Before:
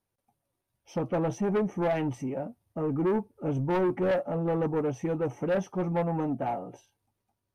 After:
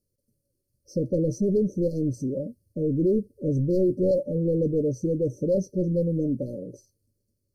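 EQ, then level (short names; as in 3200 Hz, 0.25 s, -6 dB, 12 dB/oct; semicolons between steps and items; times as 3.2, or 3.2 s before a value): brick-wall FIR band-stop 610–4100 Hz; low shelf 62 Hz +8 dB; +4.0 dB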